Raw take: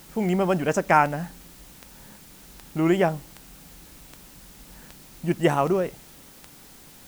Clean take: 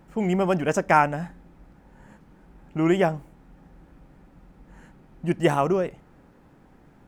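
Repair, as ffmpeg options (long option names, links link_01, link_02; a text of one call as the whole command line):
ffmpeg -i in.wav -af "adeclick=threshold=4,afwtdn=0.0032" out.wav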